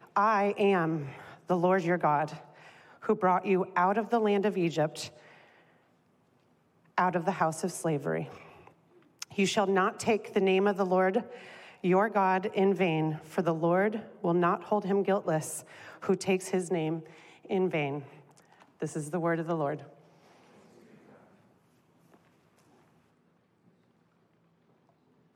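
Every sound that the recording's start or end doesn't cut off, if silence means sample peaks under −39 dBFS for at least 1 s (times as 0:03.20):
0:06.98–0:19.83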